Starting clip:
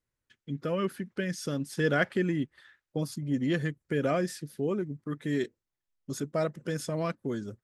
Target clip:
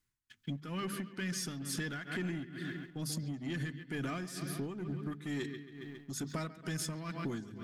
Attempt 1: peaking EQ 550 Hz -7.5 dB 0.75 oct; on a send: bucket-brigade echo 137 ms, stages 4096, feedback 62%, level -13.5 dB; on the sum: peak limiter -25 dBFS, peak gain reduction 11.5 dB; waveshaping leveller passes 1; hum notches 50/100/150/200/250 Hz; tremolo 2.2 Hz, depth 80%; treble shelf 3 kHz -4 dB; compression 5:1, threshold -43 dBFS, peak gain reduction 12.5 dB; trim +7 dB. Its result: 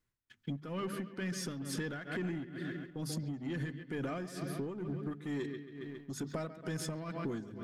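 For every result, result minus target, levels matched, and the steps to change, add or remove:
8 kHz band -4.0 dB; 500 Hz band +3.5 dB
change: treble shelf 3 kHz +2.5 dB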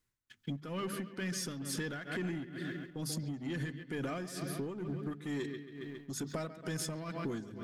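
500 Hz band +3.0 dB
change: peaking EQ 550 Hz -17.5 dB 0.75 oct

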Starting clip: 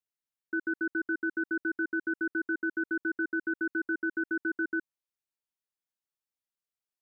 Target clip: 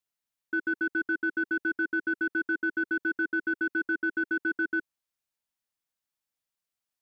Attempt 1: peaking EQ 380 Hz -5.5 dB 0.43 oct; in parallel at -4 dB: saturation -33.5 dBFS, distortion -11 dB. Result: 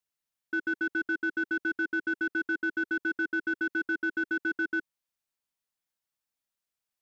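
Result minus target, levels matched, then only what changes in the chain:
saturation: distortion +9 dB
change: saturation -26 dBFS, distortion -20 dB

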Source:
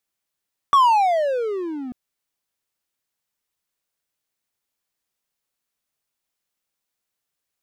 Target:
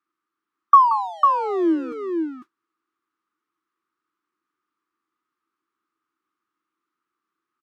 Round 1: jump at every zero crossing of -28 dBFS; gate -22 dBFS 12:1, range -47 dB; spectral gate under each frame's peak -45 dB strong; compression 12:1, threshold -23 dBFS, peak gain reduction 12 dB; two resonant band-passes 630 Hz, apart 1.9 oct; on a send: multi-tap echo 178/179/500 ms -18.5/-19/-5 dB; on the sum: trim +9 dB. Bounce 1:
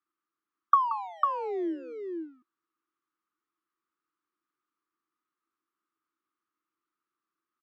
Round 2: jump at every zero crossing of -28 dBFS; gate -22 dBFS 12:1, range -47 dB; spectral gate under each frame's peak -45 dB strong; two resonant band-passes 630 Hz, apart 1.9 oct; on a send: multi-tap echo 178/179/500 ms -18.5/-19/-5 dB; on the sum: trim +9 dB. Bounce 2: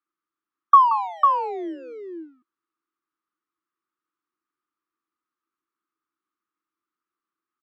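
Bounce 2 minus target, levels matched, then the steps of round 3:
jump at every zero crossing: distortion -6 dB
jump at every zero crossing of -21 dBFS; gate -22 dBFS 12:1, range -47 dB; spectral gate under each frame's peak -45 dB strong; two resonant band-passes 630 Hz, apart 1.9 oct; on a send: multi-tap echo 178/179/500 ms -18.5/-19/-5 dB; on the sum: trim +9 dB

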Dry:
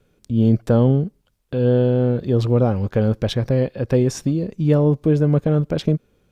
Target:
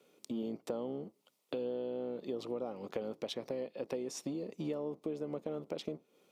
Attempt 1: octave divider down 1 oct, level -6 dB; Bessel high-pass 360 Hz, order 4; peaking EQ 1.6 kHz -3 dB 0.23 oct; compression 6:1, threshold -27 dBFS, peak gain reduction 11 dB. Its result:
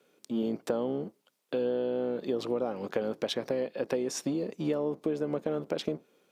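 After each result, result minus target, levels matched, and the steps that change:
compression: peak gain reduction -8 dB; 2 kHz band +3.0 dB
change: compression 6:1, threshold -36.5 dBFS, peak gain reduction 19 dB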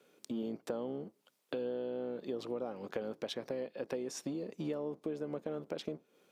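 2 kHz band +4.0 dB
change: peaking EQ 1.6 kHz -14.5 dB 0.23 oct

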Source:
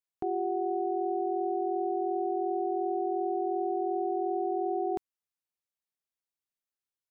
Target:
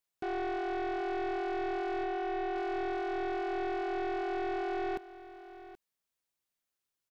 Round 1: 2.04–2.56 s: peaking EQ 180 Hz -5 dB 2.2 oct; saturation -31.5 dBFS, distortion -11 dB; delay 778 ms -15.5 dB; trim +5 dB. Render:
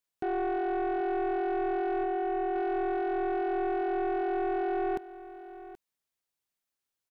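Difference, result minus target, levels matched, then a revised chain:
saturation: distortion -4 dB
2.04–2.56 s: peaking EQ 180 Hz -5 dB 2.2 oct; saturation -37.5 dBFS, distortion -7 dB; delay 778 ms -15.5 dB; trim +5 dB

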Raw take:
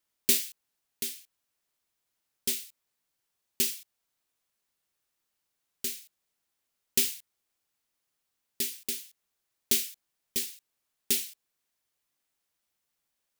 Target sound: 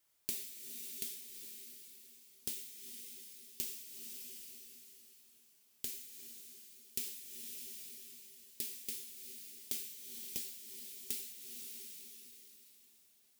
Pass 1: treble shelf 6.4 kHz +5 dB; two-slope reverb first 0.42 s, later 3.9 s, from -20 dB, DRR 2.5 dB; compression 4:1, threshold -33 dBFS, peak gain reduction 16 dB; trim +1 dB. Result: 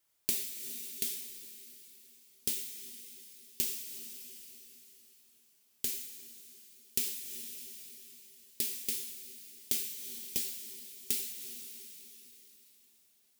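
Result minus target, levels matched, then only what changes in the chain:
compression: peak gain reduction -7.5 dB
change: compression 4:1, threshold -43 dBFS, peak gain reduction 23.5 dB

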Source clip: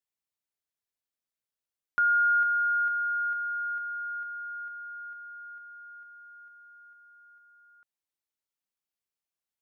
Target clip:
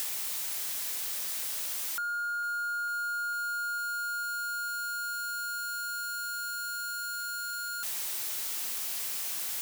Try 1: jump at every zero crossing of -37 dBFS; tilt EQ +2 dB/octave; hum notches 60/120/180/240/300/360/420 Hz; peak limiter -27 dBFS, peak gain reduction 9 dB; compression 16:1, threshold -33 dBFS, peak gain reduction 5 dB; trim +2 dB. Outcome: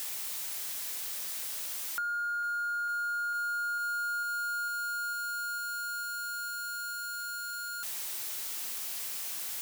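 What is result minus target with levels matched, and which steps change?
jump at every zero crossing: distortion -5 dB
change: jump at every zero crossing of -31 dBFS

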